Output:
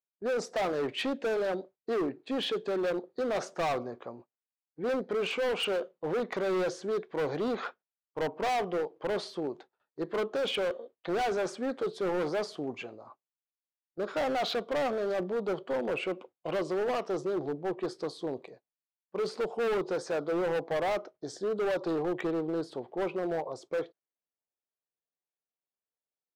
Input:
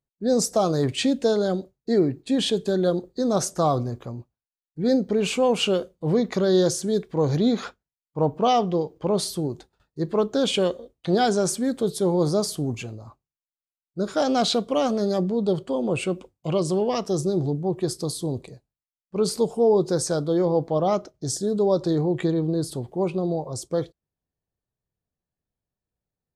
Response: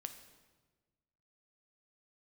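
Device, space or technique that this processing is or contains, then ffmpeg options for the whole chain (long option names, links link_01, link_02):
walkie-talkie: -af "highpass=440,lowpass=2400,asoftclip=type=hard:threshold=-27dB,agate=range=-8dB:threshold=-53dB:ratio=16:detection=peak"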